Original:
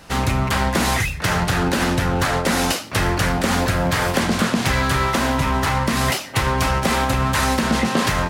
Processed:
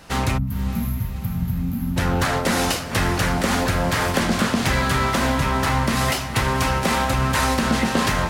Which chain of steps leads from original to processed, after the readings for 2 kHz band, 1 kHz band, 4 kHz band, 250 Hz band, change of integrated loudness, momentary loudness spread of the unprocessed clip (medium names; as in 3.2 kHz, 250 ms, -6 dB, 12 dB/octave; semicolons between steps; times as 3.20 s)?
-2.0 dB, -2.0 dB, -2.0 dB, -1.5 dB, -1.5 dB, 2 LU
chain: time-frequency box 0.38–1.97 s, 260–11000 Hz -28 dB; echo that smears into a reverb 514 ms, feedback 62%, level -12 dB; trim -1.5 dB